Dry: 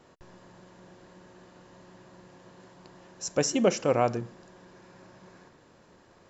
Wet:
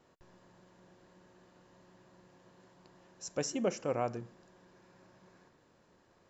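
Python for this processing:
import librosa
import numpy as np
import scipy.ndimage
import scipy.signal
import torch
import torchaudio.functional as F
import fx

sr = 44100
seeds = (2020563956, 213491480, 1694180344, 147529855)

y = fx.peak_eq(x, sr, hz=3800.0, db=-5.5, octaves=0.83, at=(3.54, 4.14))
y = y * 10.0 ** (-9.0 / 20.0)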